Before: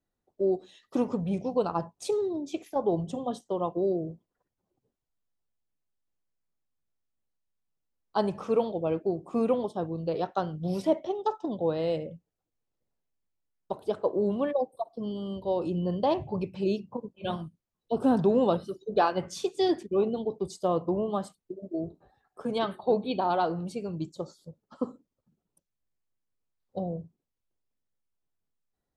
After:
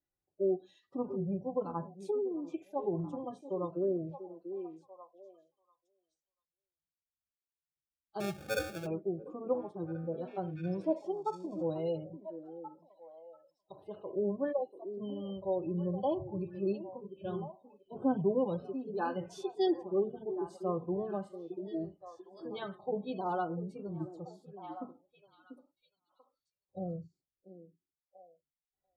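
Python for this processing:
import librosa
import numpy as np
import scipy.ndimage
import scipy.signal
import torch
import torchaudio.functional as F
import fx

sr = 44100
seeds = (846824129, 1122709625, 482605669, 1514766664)

y = fx.spec_gate(x, sr, threshold_db=-30, keep='strong')
y = fx.sample_hold(y, sr, seeds[0], rate_hz=1000.0, jitter_pct=0, at=(8.2, 8.86))
y = fx.notch_comb(y, sr, f0_hz=230.0)
y = fx.echo_stepped(y, sr, ms=690, hz=320.0, octaves=1.4, feedback_pct=70, wet_db=-8)
y = fx.hpss(y, sr, part='percussive', gain_db=-15)
y = F.gain(torch.from_numpy(y), -4.0).numpy()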